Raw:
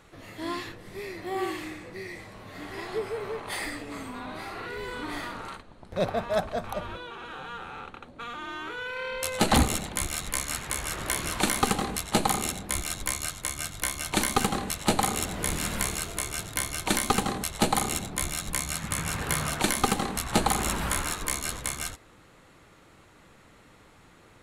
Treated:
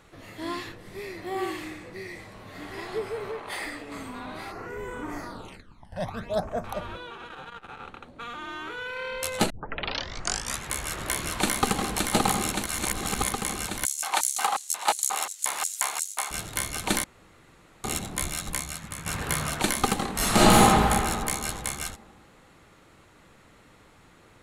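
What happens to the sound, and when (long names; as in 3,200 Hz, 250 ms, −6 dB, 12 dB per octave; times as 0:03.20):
0:03.31–0:03.92: bass and treble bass −6 dB, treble −4 dB
0:04.51–0:06.63: all-pass phaser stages 12, 0.25 Hz → 1.1 Hz, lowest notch 390–4,200 Hz
0:07.15–0:07.81: saturating transformer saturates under 380 Hz
0:09.50: tape start 1.16 s
0:11.17–0:11.95: delay throw 570 ms, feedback 80%, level −3.5 dB
0:12.66–0:13.33: reverse
0:13.85–0:16.31: auto-filter high-pass square 2.8 Hz 860–6,800 Hz
0:17.04–0:17.84: fill with room tone
0:18.50–0:19.06: fade out quadratic, to −8 dB
0:20.13–0:20.60: thrown reverb, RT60 2.2 s, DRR −10 dB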